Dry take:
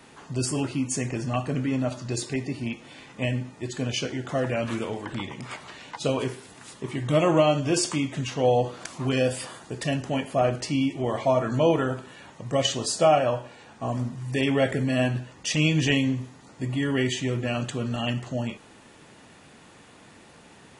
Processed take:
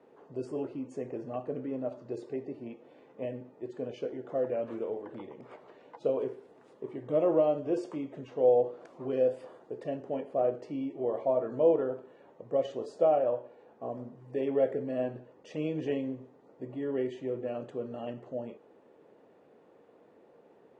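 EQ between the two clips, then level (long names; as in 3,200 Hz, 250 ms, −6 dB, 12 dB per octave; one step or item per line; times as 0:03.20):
resonant band-pass 470 Hz, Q 2.6
0.0 dB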